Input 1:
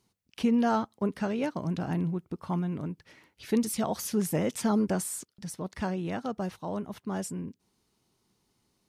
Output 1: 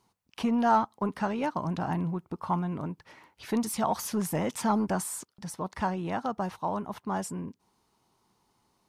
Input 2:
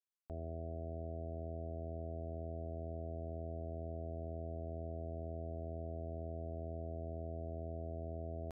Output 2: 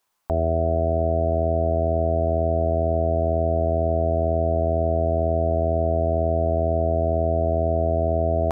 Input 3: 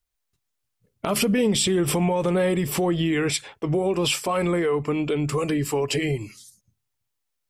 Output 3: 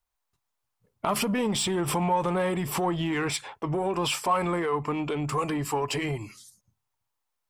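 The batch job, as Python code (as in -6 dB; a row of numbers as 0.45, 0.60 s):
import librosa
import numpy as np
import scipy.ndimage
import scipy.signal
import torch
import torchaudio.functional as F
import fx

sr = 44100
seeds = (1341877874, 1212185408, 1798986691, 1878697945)

p1 = fx.dynamic_eq(x, sr, hz=500.0, q=1.4, threshold_db=-37.0, ratio=4.0, max_db=-4)
p2 = 10.0 ** (-27.0 / 20.0) * np.tanh(p1 / 10.0 ** (-27.0 / 20.0))
p3 = p1 + (p2 * 10.0 ** (-3.5 / 20.0))
p4 = fx.peak_eq(p3, sr, hz=940.0, db=11.0, octaves=1.1)
y = librosa.util.normalize(p4) * 10.0 ** (-12 / 20.0)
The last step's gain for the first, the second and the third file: -4.5, +15.5, -8.0 dB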